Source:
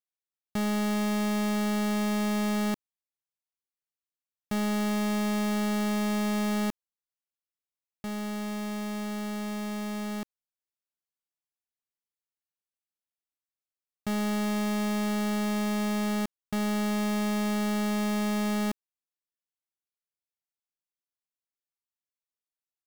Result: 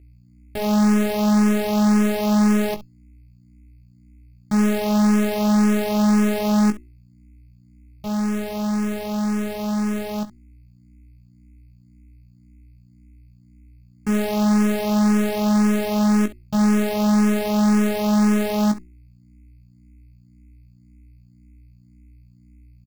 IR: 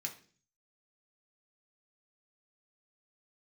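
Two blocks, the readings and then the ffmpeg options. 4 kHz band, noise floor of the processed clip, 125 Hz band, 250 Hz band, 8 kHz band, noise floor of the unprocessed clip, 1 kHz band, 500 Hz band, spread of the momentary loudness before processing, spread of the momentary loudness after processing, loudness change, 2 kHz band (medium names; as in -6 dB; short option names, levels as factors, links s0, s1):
+4.5 dB, -52 dBFS, no reading, +10.0 dB, +6.5 dB, under -85 dBFS, +7.5 dB, +9.5 dB, 6 LU, 8 LU, +9.5 dB, +5.0 dB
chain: -filter_complex "[0:a]bandreject=f=60:t=h:w=6,bandreject=f=120:t=h:w=6,bandreject=f=180:t=h:w=6,bandreject=f=240:t=h:w=6,bandreject=f=300:t=h:w=6,bandreject=f=360:t=h:w=6,aecho=1:1:19|67:0.447|0.188,aeval=exprs='val(0)+0.002*(sin(2*PI*60*n/s)+sin(2*PI*2*60*n/s)/2+sin(2*PI*3*60*n/s)/3+sin(2*PI*4*60*n/s)/4+sin(2*PI*5*60*n/s)/5)':c=same,asplit=2[s0][s1];[s1]acrusher=samples=19:mix=1:aa=0.000001,volume=0.596[s2];[s0][s2]amix=inputs=2:normalize=0,asplit=2[s3][s4];[s4]afreqshift=1.9[s5];[s3][s5]amix=inputs=2:normalize=1,volume=1.78"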